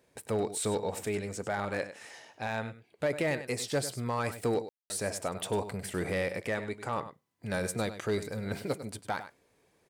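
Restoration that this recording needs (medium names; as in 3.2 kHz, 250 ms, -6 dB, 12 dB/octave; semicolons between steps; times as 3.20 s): clip repair -22.5 dBFS; room tone fill 4.69–4.90 s; inverse comb 99 ms -12.5 dB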